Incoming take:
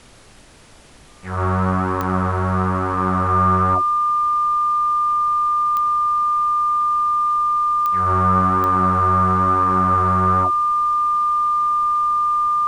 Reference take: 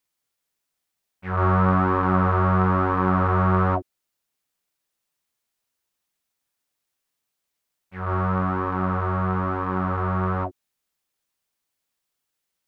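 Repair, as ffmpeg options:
ffmpeg -i in.wav -af "adeclick=threshold=4,bandreject=frequency=1200:width=30,agate=range=-21dB:threshold=-22dB,asetnsamples=nb_out_samples=441:pad=0,asendcmd='5.76 volume volume -3.5dB',volume=0dB" out.wav

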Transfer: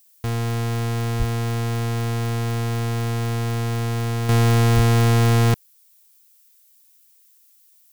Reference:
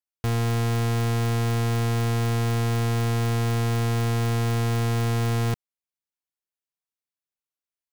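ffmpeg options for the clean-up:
ffmpeg -i in.wav -filter_complex "[0:a]asplit=3[link_01][link_02][link_03];[link_01]afade=type=out:start_time=1.18:duration=0.02[link_04];[link_02]highpass=frequency=140:width=0.5412,highpass=frequency=140:width=1.3066,afade=type=in:start_time=1.18:duration=0.02,afade=type=out:start_time=1.3:duration=0.02[link_05];[link_03]afade=type=in:start_time=1.3:duration=0.02[link_06];[link_04][link_05][link_06]amix=inputs=3:normalize=0,asplit=3[link_07][link_08][link_09];[link_07]afade=type=out:start_time=4.75:duration=0.02[link_10];[link_08]highpass=frequency=140:width=0.5412,highpass=frequency=140:width=1.3066,afade=type=in:start_time=4.75:duration=0.02,afade=type=out:start_time=4.87:duration=0.02[link_11];[link_09]afade=type=in:start_time=4.87:duration=0.02[link_12];[link_10][link_11][link_12]amix=inputs=3:normalize=0,agate=range=-21dB:threshold=-48dB,asetnsamples=nb_out_samples=441:pad=0,asendcmd='4.29 volume volume -7.5dB',volume=0dB" out.wav

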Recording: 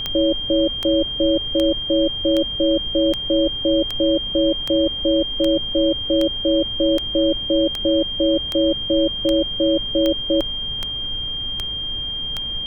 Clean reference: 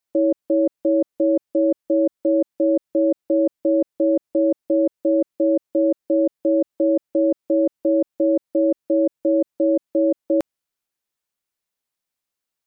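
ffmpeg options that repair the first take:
ffmpeg -i in.wav -af "adeclick=threshold=4,bandreject=frequency=3200:width=30,afftdn=noise_reduction=30:noise_floor=-27" out.wav

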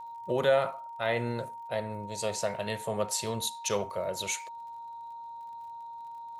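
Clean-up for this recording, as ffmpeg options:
ffmpeg -i in.wav -af "adeclick=threshold=4,bandreject=frequency=930:width=30" out.wav

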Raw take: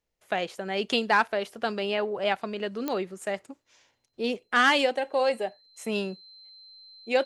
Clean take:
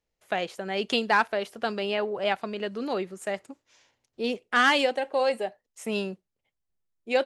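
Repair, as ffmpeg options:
ffmpeg -i in.wav -af "adeclick=threshold=4,bandreject=frequency=4100:width=30" out.wav

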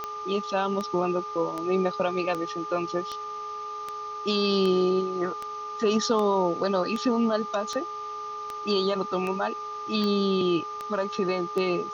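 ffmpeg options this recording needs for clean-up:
ffmpeg -i in.wav -af "adeclick=threshold=4,bandreject=frequency=423:width_type=h:width=4,bandreject=frequency=846:width_type=h:width=4,bandreject=frequency=1269:width_type=h:width=4,bandreject=frequency=1200:width=30,afwtdn=0.004" out.wav

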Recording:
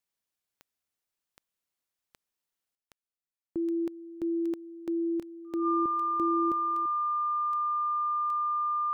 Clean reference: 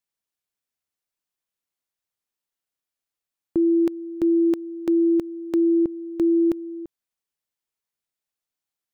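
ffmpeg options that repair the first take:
ffmpeg -i in.wav -af "adeclick=threshold=4,bandreject=frequency=1200:width=30,asetnsamples=nb_out_samples=441:pad=0,asendcmd='2.75 volume volume 11dB',volume=0dB" out.wav

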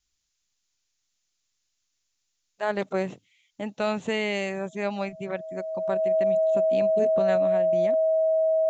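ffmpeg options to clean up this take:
ffmpeg -i in.wav -af "bandreject=frequency=640:width=30,agate=range=-21dB:threshold=-69dB" out.wav

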